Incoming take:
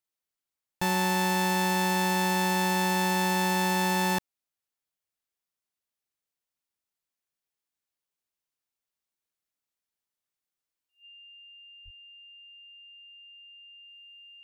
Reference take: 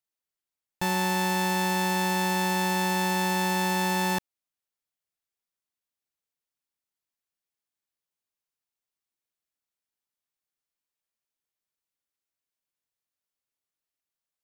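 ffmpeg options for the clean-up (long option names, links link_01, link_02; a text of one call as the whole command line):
ffmpeg -i in.wav -filter_complex "[0:a]bandreject=frequency=2800:width=30,asplit=3[link_01][link_02][link_03];[link_01]afade=type=out:start_time=11.84:duration=0.02[link_04];[link_02]highpass=frequency=140:width=0.5412,highpass=frequency=140:width=1.3066,afade=type=in:start_time=11.84:duration=0.02,afade=type=out:start_time=11.96:duration=0.02[link_05];[link_03]afade=type=in:start_time=11.96:duration=0.02[link_06];[link_04][link_05][link_06]amix=inputs=3:normalize=0,asetnsamples=nb_out_samples=441:pad=0,asendcmd='13.88 volume volume -3dB',volume=0dB" out.wav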